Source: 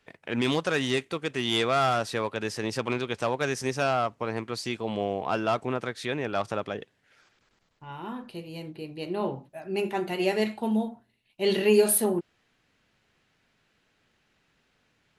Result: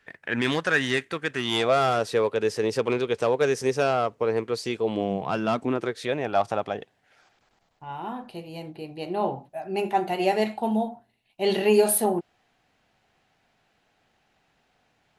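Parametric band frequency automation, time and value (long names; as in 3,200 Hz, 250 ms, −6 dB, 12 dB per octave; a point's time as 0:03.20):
parametric band +11 dB 0.52 octaves
0:01.32 1,700 Hz
0:01.80 450 Hz
0:04.82 450 Hz
0:05.26 140 Hz
0:06.27 750 Hz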